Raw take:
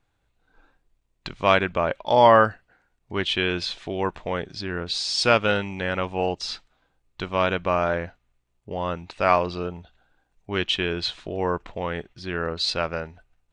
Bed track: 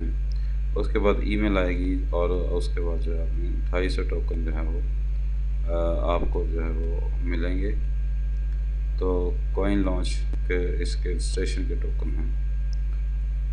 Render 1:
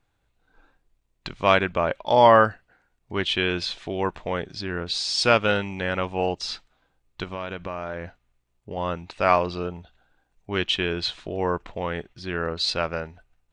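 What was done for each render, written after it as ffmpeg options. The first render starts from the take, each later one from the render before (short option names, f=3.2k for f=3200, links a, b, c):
-filter_complex "[0:a]asettb=1/sr,asplit=3[a][b][c];[a]atrim=end=7.234[d];[b]atrim=start=7.23:end=8.77,asetpts=PTS-STARTPTS,afade=t=in:d=0.004:c=qsin,afade=t=out:st=1.536:d=0.004:c=qsin,acompressor=threshold=-28dB:ratio=5:attack=3.2:release=140:knee=1:detection=peak[e];[c]atrim=start=8.766[f];[d][e]acrossfade=d=0.004:c1=hsin:c2=qsin[g];[g][f]acrossfade=d=0.004:c1=qsin:c2=hsin"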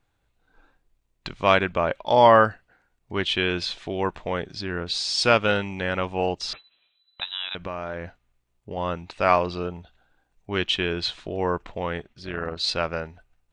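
-filter_complex "[0:a]asettb=1/sr,asplit=3[a][b][c];[a]atrim=end=6.534[d];[b]atrim=start=6.53:end=7.55,asetpts=PTS-STARTPTS,afade=t=in:d=0.004:c=qsin,afade=t=out:st=1.016:d=0.004:c=qsin,lowpass=f=3.4k:t=q:w=0.5098,lowpass=f=3.4k:t=q:w=0.6013,lowpass=f=3.4k:t=q:w=0.9,lowpass=f=3.4k:t=q:w=2.563,afreqshift=-4000[e];[c]atrim=start=7.546[f];[d][e]acrossfade=d=0.004:c1=hsin:c2=qsin[g];[g][f]acrossfade=d=0.004:c1=qsin:c2=hsin,asettb=1/sr,asplit=3[h][i][j];[h]atrim=end=11.984[k];[i]atrim=start=11.98:end=12.64,asetpts=PTS-STARTPTS,afade=t=in:d=0.004:c=qsin,afade=t=out:st=0.656:d=0.004:c=qsin,tremolo=f=230:d=0.621[l];[j]atrim=start=12.636[m];[k][l]acrossfade=d=0.004:c1=hsin:c2=qsin[n];[n][m]acrossfade=d=0.004:c1=qsin:c2=hsin"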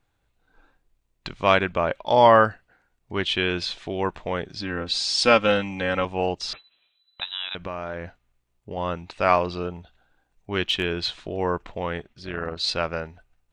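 -filter_complex "[0:a]asettb=1/sr,asplit=3[a][b][c];[a]atrim=end=4.614[d];[b]atrim=start=4.61:end=6.05,asetpts=PTS-STARTPTS,afade=t=in:d=0.004:c=qsin,afade=t=out:st=1.436:d=0.004:c=qsin,aecho=1:1:3.8:0.64,atrim=end_sample=63504[e];[c]atrim=start=6.046[f];[d][e]acrossfade=d=0.004:c1=hsin:c2=qsin[g];[g][f]acrossfade=d=0.004:c1=qsin:c2=hsin,asettb=1/sr,asplit=3[h][i][j];[h]atrim=end=10.654[k];[i]atrim=start=10.65:end=11.42,asetpts=PTS-STARTPTS,afade=t=in:d=0.004:c=qsin,afade=t=out:st=0.766:d=0.004:c=qsin,asoftclip=type=hard:threshold=-15.5dB[l];[j]atrim=start=11.416[m];[k][l]acrossfade=d=0.004:c1=hsin:c2=qsin[n];[n][m]acrossfade=d=0.004:c1=qsin:c2=hsin"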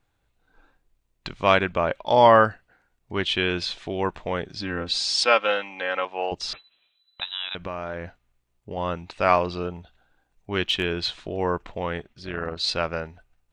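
-filter_complex "[0:a]asettb=1/sr,asplit=3[a][b][c];[a]atrim=end=5.244[d];[b]atrim=start=5.24:end=6.32,asetpts=PTS-STARTPTS,afade=t=in:d=0.004:c=qsin,afade=t=out:st=1.076:d=0.004:c=qsin,highpass=540,lowpass=4k[e];[c]atrim=start=6.316[f];[d][e]acrossfade=d=0.004:c1=hsin:c2=qsin[g];[g][f]acrossfade=d=0.004:c1=qsin:c2=hsin"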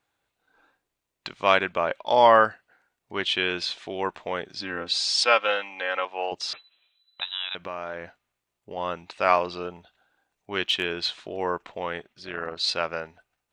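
-af "highpass=f=450:p=1"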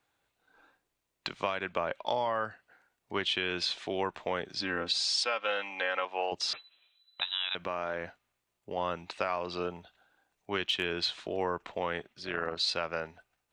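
-filter_complex "[0:a]alimiter=limit=-13dB:level=0:latency=1:release=299,acrossover=split=160[a][b];[b]acompressor=threshold=-27dB:ratio=6[c];[a][c]amix=inputs=2:normalize=0"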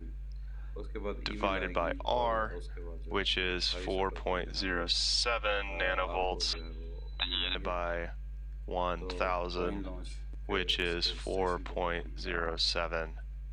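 -filter_complex "[1:a]volume=-16dB[a];[0:a][a]amix=inputs=2:normalize=0"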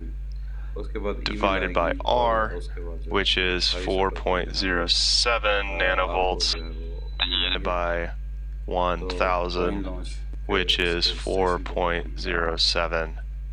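-af "volume=9dB"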